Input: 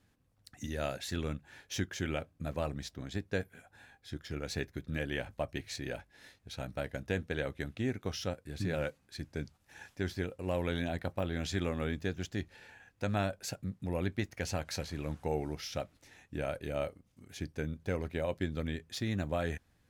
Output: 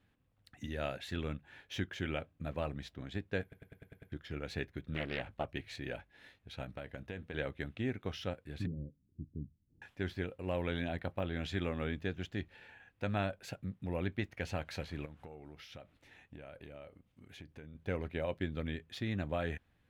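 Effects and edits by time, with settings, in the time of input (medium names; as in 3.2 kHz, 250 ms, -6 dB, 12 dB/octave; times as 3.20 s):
3.42 s: stutter in place 0.10 s, 7 plays
4.94–5.46 s: loudspeaker Doppler distortion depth 0.9 ms
6.63–7.34 s: compression 4:1, threshold -37 dBFS
8.66–9.82 s: inverse Chebyshev low-pass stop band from 1.3 kHz, stop band 70 dB
15.05–17.75 s: compression, threshold -44 dBFS
whole clip: resonant high shelf 4.2 kHz -8.5 dB, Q 1.5; trim -2.5 dB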